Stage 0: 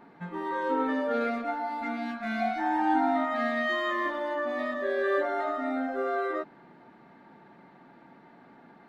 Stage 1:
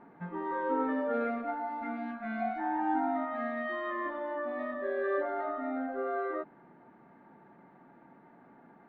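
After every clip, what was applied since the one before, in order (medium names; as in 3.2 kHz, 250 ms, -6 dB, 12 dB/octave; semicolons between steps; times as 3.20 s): low-pass 1.8 kHz 12 dB/octave; gain riding within 5 dB 2 s; trim -4.5 dB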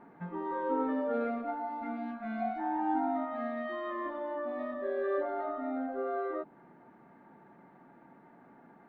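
dynamic bell 1.8 kHz, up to -6 dB, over -52 dBFS, Q 1.4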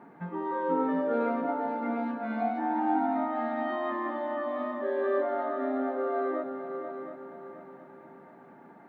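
high-pass 98 Hz 12 dB/octave; on a send: multi-head delay 239 ms, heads second and third, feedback 43%, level -10 dB; on the sum: trim +3.5 dB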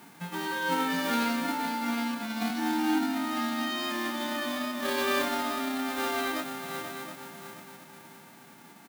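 formants flattened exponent 0.3; doubling 25 ms -12 dB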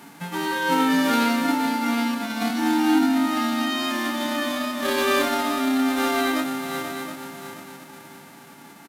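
on a send at -11.5 dB: reverberation RT60 0.35 s, pre-delay 4 ms; on the sum: resampled via 32 kHz; trim +6 dB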